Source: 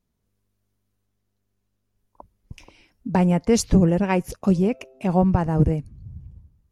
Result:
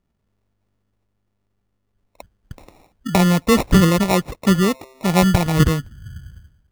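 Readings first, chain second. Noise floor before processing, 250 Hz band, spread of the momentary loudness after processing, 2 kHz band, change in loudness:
−75 dBFS, +3.5 dB, 7 LU, +10.0 dB, +4.0 dB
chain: decimation without filtering 28×
level +3.5 dB

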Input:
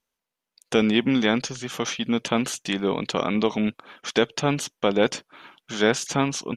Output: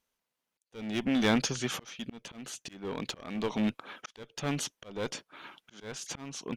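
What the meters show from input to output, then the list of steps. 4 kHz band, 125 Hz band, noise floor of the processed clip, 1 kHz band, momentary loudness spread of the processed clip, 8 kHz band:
−9.5 dB, −8.5 dB, below −85 dBFS, −11.5 dB, 19 LU, −7.0 dB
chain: asymmetric clip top −21.5 dBFS
volume swells 729 ms

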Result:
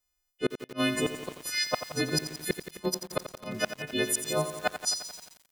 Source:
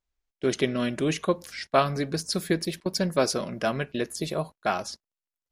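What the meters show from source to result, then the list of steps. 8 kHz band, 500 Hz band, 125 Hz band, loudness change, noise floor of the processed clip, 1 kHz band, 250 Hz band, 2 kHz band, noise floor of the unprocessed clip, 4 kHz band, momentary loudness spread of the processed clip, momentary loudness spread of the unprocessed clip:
+4.0 dB, −5.5 dB, −6.5 dB, −3.0 dB, −79 dBFS, −7.0 dB, −5.0 dB, 0.0 dB, below −85 dBFS, +1.0 dB, 9 LU, 6 LU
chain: every partial snapped to a pitch grid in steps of 3 semitones
gate with flip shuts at −14 dBFS, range −39 dB
feedback echo at a low word length 87 ms, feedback 80%, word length 7 bits, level −10 dB

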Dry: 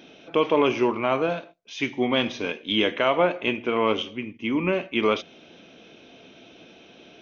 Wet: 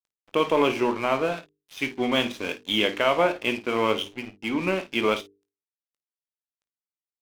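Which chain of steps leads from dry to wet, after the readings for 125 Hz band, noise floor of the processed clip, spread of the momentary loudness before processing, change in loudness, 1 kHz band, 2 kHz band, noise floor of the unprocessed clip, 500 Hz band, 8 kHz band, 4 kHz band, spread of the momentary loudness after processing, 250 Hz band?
−2.0 dB, below −85 dBFS, 9 LU, −1.0 dB, 0.0 dB, 0.0 dB, −51 dBFS, −1.5 dB, can't be measured, +0.5 dB, 10 LU, −2.0 dB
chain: high-shelf EQ 3,100 Hz +2.5 dB
dead-zone distortion −37.5 dBFS
mains-hum notches 50/100/150/200/250/300/350/400/450 Hz
ambience of single reflections 20 ms −12 dB, 53 ms −14.5 dB

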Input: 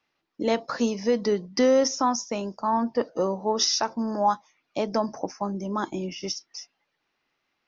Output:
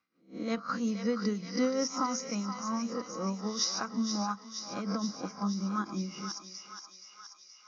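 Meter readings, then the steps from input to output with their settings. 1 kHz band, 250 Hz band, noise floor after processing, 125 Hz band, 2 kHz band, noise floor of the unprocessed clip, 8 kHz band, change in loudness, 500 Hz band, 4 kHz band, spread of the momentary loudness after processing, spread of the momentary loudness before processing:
−9.5 dB, −4.0 dB, −58 dBFS, −1.0 dB, −5.5 dB, −78 dBFS, can't be measured, −7.5 dB, −12.5 dB, −6.5 dB, 15 LU, 11 LU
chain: peak hold with a rise ahead of every peak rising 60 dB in 0.36 s
thirty-one-band graphic EQ 200 Hz +9 dB, 400 Hz −8 dB, 630 Hz −11 dB, 1,250 Hz +5 dB, 3,150 Hz −8 dB
amplitude tremolo 5.5 Hz, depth 51%
notch comb filter 890 Hz
feedback echo with a high-pass in the loop 474 ms, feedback 73%, high-pass 940 Hz, level −7 dB
every ending faded ahead of time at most 320 dB per second
level −5.5 dB

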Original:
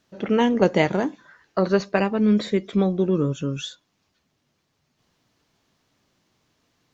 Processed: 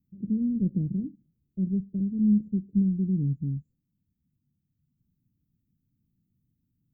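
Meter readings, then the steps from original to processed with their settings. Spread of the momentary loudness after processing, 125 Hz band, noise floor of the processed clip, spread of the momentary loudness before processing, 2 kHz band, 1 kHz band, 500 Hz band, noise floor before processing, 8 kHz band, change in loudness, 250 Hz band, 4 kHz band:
10 LU, −1.0 dB, −79 dBFS, 10 LU, below −40 dB, below −40 dB, −25.0 dB, −72 dBFS, can't be measured, −5.5 dB, −3.0 dB, below −40 dB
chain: inverse Chebyshev band-stop filter 850–6,000 Hz, stop band 70 dB

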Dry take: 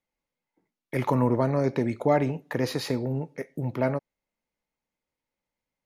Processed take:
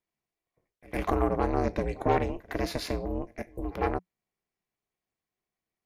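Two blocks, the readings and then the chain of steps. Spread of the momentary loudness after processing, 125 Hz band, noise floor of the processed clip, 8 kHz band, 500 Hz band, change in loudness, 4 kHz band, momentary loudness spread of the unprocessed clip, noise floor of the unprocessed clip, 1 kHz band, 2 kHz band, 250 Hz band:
10 LU, −6.5 dB, below −85 dBFS, −2.5 dB, −3.5 dB, −3.5 dB, −2.5 dB, 9 LU, below −85 dBFS, +0.5 dB, −1.5 dB, −5.0 dB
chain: echo ahead of the sound 107 ms −22 dB
harmonic generator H 4 −18 dB, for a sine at −11 dBFS
ring modulation 180 Hz

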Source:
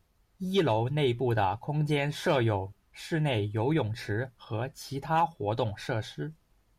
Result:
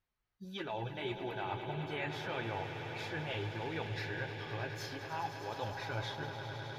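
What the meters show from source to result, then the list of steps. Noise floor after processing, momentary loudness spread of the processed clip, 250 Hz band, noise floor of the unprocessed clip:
below −85 dBFS, 3 LU, −12.5 dB, −69 dBFS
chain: noise reduction from a noise print of the clip's start 14 dB
parametric band 2,000 Hz +10 dB 2.7 octaves
reversed playback
downward compressor, threshold −30 dBFS, peak gain reduction 14 dB
reversed playback
parametric band 9,000 Hz −10 dB 0.39 octaves
flanger 0.3 Hz, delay 7.4 ms, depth 4.4 ms, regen −52%
on a send: echo that builds up and dies away 103 ms, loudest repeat 5, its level −11.5 dB
on the sum: flanger 1.6 Hz, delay 3.5 ms, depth 3.6 ms, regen −62%
level +1 dB

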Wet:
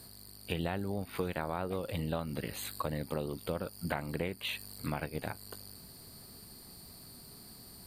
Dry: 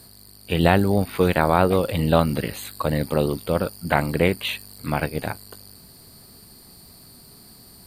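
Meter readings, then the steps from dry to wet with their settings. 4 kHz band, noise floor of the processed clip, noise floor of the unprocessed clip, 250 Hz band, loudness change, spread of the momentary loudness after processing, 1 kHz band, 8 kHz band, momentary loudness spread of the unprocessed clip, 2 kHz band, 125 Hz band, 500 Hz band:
−11.0 dB, −53 dBFS, −48 dBFS, −15.0 dB, −15.5 dB, 14 LU, −16.5 dB, −8.5 dB, 10 LU, −14.5 dB, −15.0 dB, −16.0 dB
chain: downward compressor 5 to 1, threshold −28 dBFS, peak gain reduction 15 dB
level −4.5 dB

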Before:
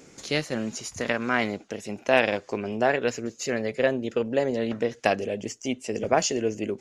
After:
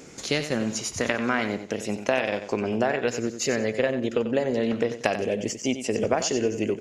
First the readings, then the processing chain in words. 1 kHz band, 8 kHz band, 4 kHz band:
−2.0 dB, +2.5 dB, +1.0 dB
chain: downward compressor 6 to 1, threshold −25 dBFS, peak gain reduction 11 dB
on a send: repeating echo 92 ms, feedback 28%, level −10.5 dB
on the sum: level +5 dB

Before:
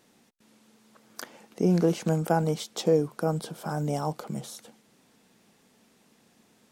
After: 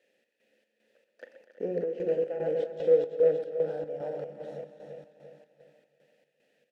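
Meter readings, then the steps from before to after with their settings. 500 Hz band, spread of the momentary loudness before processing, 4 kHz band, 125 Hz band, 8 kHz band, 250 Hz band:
+2.5 dB, 19 LU, below −15 dB, −18.0 dB, below −25 dB, −13.5 dB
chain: feedback delay that plays each chunk backwards 171 ms, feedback 74%, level −5.5 dB
high-shelf EQ 2,700 Hz −12 dB
leveller curve on the samples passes 1
in parallel at −8.5 dB: bit-depth reduction 8 bits, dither triangular
on the sum: formant filter e
on a send: multi-tap delay 41/124/245/322 ms −12/−12/−10/−11 dB
on the sum: square-wave tremolo 2.5 Hz, depth 60%, duty 60%

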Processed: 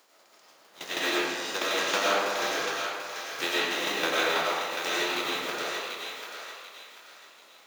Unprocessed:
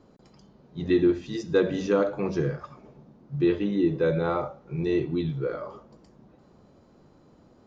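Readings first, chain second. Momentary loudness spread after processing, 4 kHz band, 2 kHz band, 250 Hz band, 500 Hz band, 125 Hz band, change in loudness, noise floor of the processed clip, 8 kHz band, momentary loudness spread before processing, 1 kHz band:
16 LU, +16.0 dB, +11.0 dB, −12.5 dB, −6.0 dB, −22.5 dB, −2.0 dB, −59 dBFS, can't be measured, 14 LU, +7.5 dB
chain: compressing power law on the bin magnitudes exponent 0.39
high-pass filter 520 Hz 12 dB per octave
shaped tremolo saw down 6.2 Hz, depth 85%
feedback echo with a high-pass in the loop 739 ms, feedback 36%, high-pass 1,000 Hz, level −5 dB
comb and all-pass reverb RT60 1.7 s, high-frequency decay 0.45×, pre-delay 60 ms, DRR −6 dB
level −2.5 dB

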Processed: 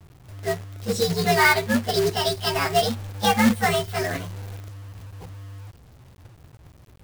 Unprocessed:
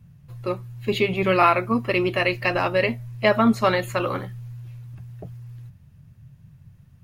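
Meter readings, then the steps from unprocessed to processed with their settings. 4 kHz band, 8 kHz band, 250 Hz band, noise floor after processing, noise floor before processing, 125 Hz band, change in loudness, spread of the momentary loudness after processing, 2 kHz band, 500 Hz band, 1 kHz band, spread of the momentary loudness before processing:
+5.5 dB, +15.0 dB, −1.0 dB, −50 dBFS, −52 dBFS, +0.5 dB, 0.0 dB, 22 LU, +1.0 dB, −2.0 dB, −0.5 dB, 21 LU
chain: partials spread apart or drawn together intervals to 127%
log-companded quantiser 4 bits
level +2 dB

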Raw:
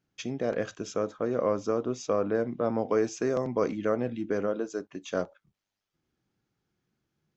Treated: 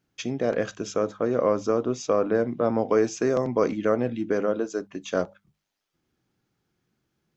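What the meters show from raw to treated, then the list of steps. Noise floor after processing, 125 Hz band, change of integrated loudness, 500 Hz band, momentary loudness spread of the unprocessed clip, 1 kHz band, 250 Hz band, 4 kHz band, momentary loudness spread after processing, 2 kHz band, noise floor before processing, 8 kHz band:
−80 dBFS, +4.0 dB, +4.5 dB, +4.5 dB, 6 LU, +4.5 dB, +4.5 dB, +4.5 dB, 6 LU, +4.5 dB, below −85 dBFS, can't be measured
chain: mains-hum notches 50/100/150/200 Hz
level +4.5 dB

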